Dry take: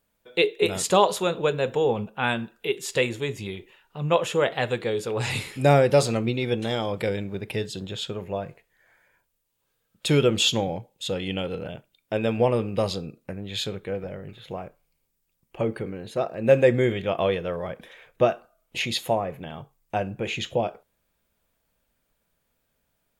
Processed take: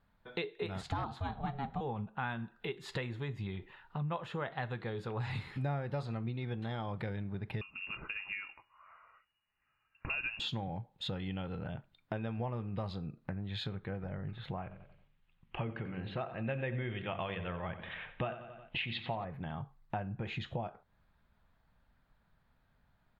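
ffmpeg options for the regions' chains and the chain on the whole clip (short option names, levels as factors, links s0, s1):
-filter_complex "[0:a]asettb=1/sr,asplit=3[s0][s1][s2];[s0]atrim=end=0.814[s3];[s1]atrim=start=0.81:end=1.81,asetpts=PTS-STARTPTS,afade=t=in:d=0.004:c=qsin,afade=t=out:st=0.996:d=0.004:c=qsin,lowpass=10000,aeval=exprs='val(0)*sin(2*PI*280*n/s)':c=same,asoftclip=type=hard:threshold=0.211[s4];[s2]atrim=start=1.806[s5];[s3][s4]acrossfade=d=0.004:c1=hsin:c2=qsin[s6];[s6][s5]acrossfade=d=0.004:c1=qsin:c2=hsin,asettb=1/sr,asplit=3[s7][s8][s9];[s7]atrim=end=7.614[s10];[s8]atrim=start=7.61:end=10.4,asetpts=PTS-STARTPTS,afade=t=in:d=0.004:c=qsin,afade=t=out:st=2.786:d=0.004:c=qsin,lowpass=f=2500:t=q:w=0.5098,lowpass=f=2500:t=q:w=0.6013,lowpass=f=2500:t=q:w=0.9,lowpass=f=2500:t=q:w=2.563,afreqshift=-2900,asubboost=boost=3:cutoff=150,bandreject=f=740:w=7.6[s11];[s9]atrim=start=10.396[s12];[s10][s11]acrossfade=d=0.004:c1=hsin:c2=qsin[s13];[s13][s12]acrossfade=d=0.004:c1=qsin:c2=hsin,asettb=1/sr,asplit=3[s14][s15][s16];[s14]atrim=end=14.624[s17];[s15]atrim=start=14.62:end=19.25,asetpts=PTS-STARTPTS,afade=t=in:d=0.004:c=qsin,afade=t=out:st=4.626:d=0.004:c=qsin,lowpass=f=2900:t=q:w=3.6,bandreject=f=48.28:t=h:w=4,bandreject=f=96.56:t=h:w=4,bandreject=f=144.84:t=h:w=4,bandreject=f=193.12:t=h:w=4,bandreject=f=241.4:t=h:w=4,bandreject=f=289.68:t=h:w=4,bandreject=f=337.96:t=h:w=4,bandreject=f=386.24:t=h:w=4,bandreject=f=434.52:t=h:w=4,bandreject=f=482.8:t=h:w=4,bandreject=f=531.08:t=h:w=4,bandreject=f=579.36:t=h:w=4,bandreject=f=627.64:t=h:w=4,aecho=1:1:90|180|270|360:0.2|0.0898|0.0404|0.0182,atrim=end_sample=204183[s18];[s16]atrim=start=19.246[s19];[s17][s18]acrossfade=d=0.004:c1=hsin:c2=qsin[s20];[s20][s19]acrossfade=d=0.004:c1=qsin:c2=hsin,firequalizer=gain_entry='entry(130,0);entry(290,-8);entry(500,-13);entry(790,-3);entry(1700,-4);entry(2800,-13);entry(4100,-10);entry(5800,-24);entry(8400,-27)':delay=0.05:min_phase=1,acompressor=threshold=0.00562:ratio=4,bandreject=f=2300:w=29,volume=2.37"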